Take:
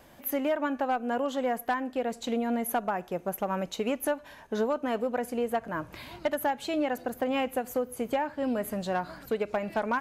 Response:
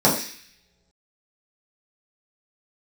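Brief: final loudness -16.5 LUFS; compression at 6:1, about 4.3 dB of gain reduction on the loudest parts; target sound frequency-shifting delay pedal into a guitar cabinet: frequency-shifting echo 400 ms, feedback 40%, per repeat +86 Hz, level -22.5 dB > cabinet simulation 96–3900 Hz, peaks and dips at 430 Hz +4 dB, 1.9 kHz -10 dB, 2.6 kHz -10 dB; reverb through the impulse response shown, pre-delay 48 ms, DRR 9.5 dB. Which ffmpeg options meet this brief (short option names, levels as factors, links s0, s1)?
-filter_complex "[0:a]acompressor=threshold=0.0398:ratio=6,asplit=2[s0][s1];[1:a]atrim=start_sample=2205,adelay=48[s2];[s1][s2]afir=irnorm=-1:irlink=0,volume=0.0335[s3];[s0][s3]amix=inputs=2:normalize=0,asplit=4[s4][s5][s6][s7];[s5]adelay=400,afreqshift=86,volume=0.075[s8];[s6]adelay=800,afreqshift=172,volume=0.0299[s9];[s7]adelay=1200,afreqshift=258,volume=0.012[s10];[s4][s8][s9][s10]amix=inputs=4:normalize=0,highpass=96,equalizer=f=430:t=q:w=4:g=4,equalizer=f=1900:t=q:w=4:g=-10,equalizer=f=2600:t=q:w=4:g=-10,lowpass=f=3900:w=0.5412,lowpass=f=3900:w=1.3066,volume=5.96"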